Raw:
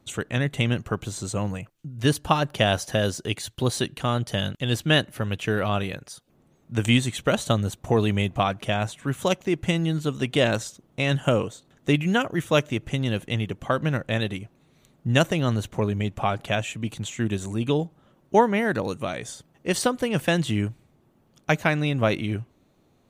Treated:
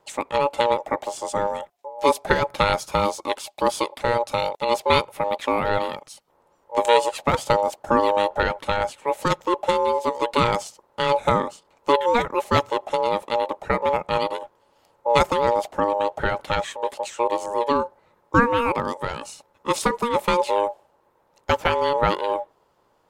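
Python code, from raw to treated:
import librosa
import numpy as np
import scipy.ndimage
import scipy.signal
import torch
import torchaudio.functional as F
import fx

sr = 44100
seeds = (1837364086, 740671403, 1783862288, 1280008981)

y = x * np.sin(2.0 * np.pi * 710.0 * np.arange(len(x)) / sr)
y = fx.dynamic_eq(y, sr, hz=570.0, q=0.88, threshold_db=-39.0, ratio=4.0, max_db=6)
y = F.gain(torch.from_numpy(y), 1.5).numpy()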